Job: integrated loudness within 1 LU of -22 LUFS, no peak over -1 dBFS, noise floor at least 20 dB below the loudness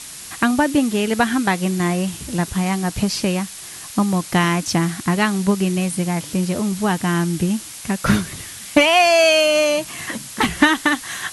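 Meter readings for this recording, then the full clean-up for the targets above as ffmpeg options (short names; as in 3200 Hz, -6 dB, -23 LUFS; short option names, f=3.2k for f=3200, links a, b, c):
noise floor -35 dBFS; noise floor target -39 dBFS; loudness -18.5 LUFS; peak -1.5 dBFS; loudness target -22.0 LUFS
-> -af "afftdn=nr=6:nf=-35"
-af "volume=-3.5dB"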